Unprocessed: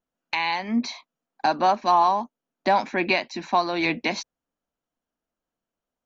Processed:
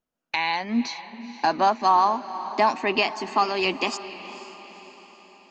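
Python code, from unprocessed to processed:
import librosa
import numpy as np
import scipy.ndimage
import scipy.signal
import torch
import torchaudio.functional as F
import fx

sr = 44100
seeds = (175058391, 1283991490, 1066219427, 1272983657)

y = fx.speed_glide(x, sr, from_pct=97, to_pct=123)
y = fx.echo_diffused(y, sr, ms=477, feedback_pct=51, wet_db=-14)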